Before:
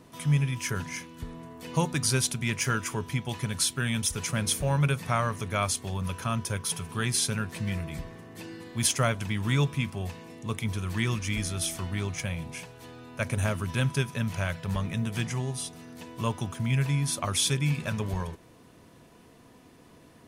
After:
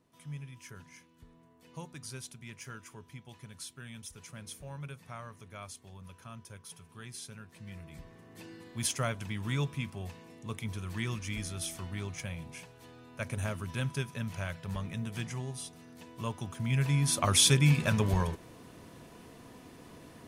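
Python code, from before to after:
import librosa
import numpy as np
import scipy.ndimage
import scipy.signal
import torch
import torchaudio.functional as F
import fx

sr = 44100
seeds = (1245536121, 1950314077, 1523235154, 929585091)

y = fx.gain(x, sr, db=fx.line((7.48, -18.0), (8.36, -7.0), (16.4, -7.0), (17.32, 3.0)))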